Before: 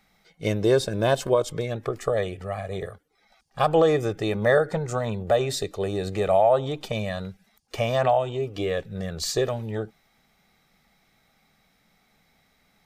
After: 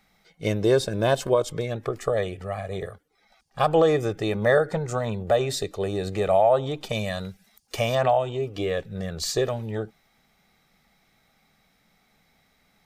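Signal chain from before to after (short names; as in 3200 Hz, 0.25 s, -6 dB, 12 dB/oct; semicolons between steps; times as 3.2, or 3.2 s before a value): 6.89–7.95 high shelf 4000 Hz +8.5 dB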